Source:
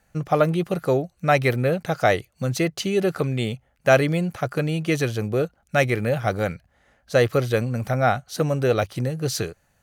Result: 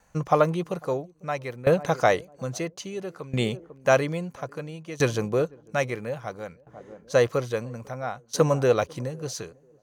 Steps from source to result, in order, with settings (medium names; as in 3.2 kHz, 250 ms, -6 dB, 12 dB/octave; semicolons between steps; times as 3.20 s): graphic EQ with 31 bands 100 Hz -6 dB, 500 Hz +4 dB, 1 kHz +12 dB, 6.3 kHz +7 dB, 12.5 kHz -6 dB; band-passed feedback delay 497 ms, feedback 50%, band-pass 310 Hz, level -19.5 dB; sawtooth tremolo in dB decaying 0.6 Hz, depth 18 dB; trim +1 dB